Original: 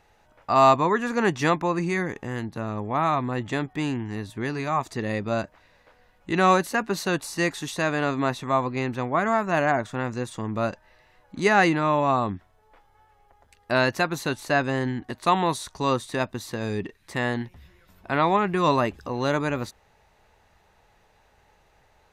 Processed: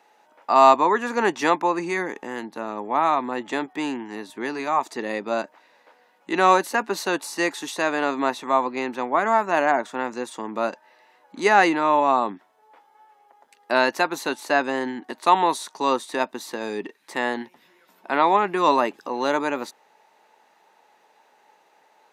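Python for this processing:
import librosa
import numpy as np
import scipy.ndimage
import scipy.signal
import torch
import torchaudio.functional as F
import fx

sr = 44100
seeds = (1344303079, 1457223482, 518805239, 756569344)

y = scipy.signal.sosfilt(scipy.signal.butter(4, 250.0, 'highpass', fs=sr, output='sos'), x)
y = fx.peak_eq(y, sr, hz=890.0, db=6.5, octaves=0.26)
y = y * librosa.db_to_amplitude(1.5)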